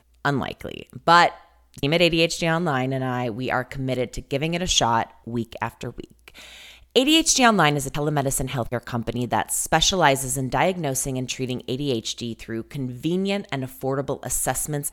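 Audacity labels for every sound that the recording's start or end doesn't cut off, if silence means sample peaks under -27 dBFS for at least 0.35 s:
1.780000	6.280000	sound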